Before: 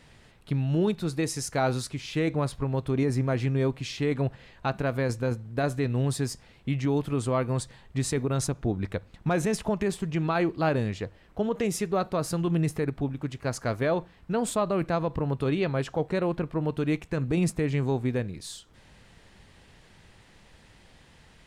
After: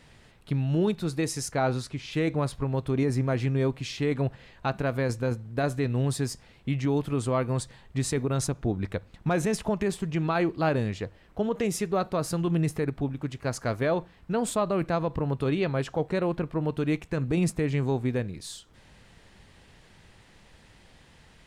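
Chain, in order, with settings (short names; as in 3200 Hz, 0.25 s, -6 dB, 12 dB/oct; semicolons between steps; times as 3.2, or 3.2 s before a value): 1.51–2.11 high shelf 4500 Hz -> 7200 Hz -9.5 dB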